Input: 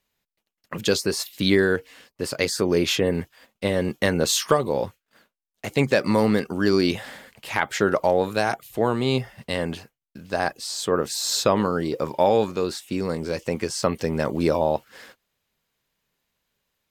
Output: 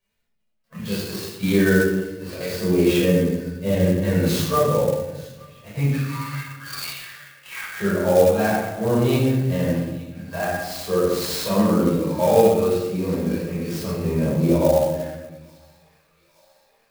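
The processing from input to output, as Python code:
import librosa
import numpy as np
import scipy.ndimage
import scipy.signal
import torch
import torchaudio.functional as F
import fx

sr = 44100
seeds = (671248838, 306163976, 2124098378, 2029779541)

p1 = fx.spec_quant(x, sr, step_db=15)
p2 = fx.cheby1_highpass(p1, sr, hz=1200.0, order=4, at=(5.89, 7.67))
p3 = fx.hpss(p2, sr, part='percussive', gain_db=-16)
p4 = p3 + fx.echo_wet_highpass(p3, sr, ms=869, feedback_pct=66, hz=1600.0, wet_db=-20, dry=0)
p5 = fx.room_shoebox(p4, sr, seeds[0], volume_m3=550.0, walls='mixed', distance_m=5.5)
p6 = fx.clock_jitter(p5, sr, seeds[1], jitter_ms=0.03)
y = p6 * librosa.db_to_amplitude(-6.0)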